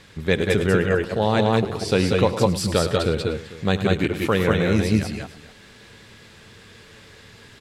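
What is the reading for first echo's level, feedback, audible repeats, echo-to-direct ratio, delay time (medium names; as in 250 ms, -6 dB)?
-19.0 dB, no regular repeats, 5, -1.0 dB, 73 ms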